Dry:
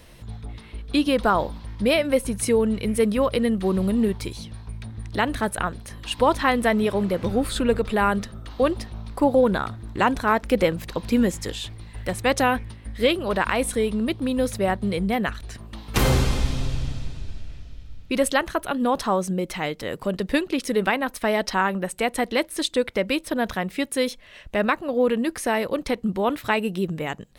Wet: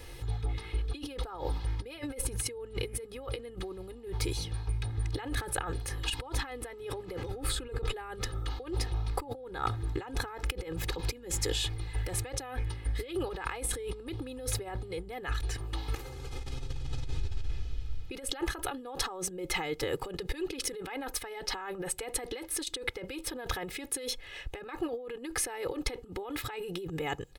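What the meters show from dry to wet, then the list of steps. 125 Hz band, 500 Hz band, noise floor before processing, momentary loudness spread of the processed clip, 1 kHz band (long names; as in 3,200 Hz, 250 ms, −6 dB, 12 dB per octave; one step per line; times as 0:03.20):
−6.5 dB, −15.5 dB, −46 dBFS, 7 LU, −15.5 dB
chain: compressor whose output falls as the input rises −31 dBFS, ratio −1
comb filter 2.4 ms, depth 93%
level −7.5 dB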